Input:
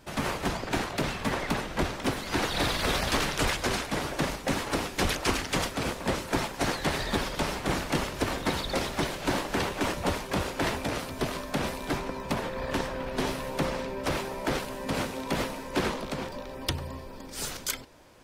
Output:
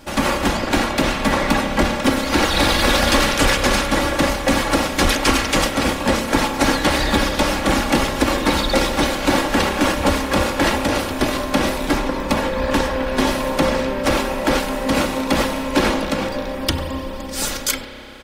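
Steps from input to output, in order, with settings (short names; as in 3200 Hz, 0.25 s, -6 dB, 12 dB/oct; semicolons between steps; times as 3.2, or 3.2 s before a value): comb 3.6 ms, depth 51%; in parallel at -2.5 dB: limiter -17.5 dBFS, peak gain reduction 7 dB; on the sum: spring tank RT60 3.2 s, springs 30 ms, chirp 20 ms, DRR 7 dB; gain +5.5 dB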